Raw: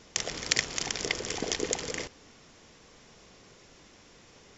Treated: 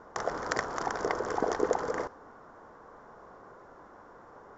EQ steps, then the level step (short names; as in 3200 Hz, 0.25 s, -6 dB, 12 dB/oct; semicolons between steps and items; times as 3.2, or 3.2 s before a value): EQ curve 160 Hz 0 dB, 1000 Hz +15 dB, 1500 Hz +11 dB, 2500 Hz -16 dB; dynamic EQ 5700 Hz, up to +6 dB, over -54 dBFS, Q 1.1; -3.0 dB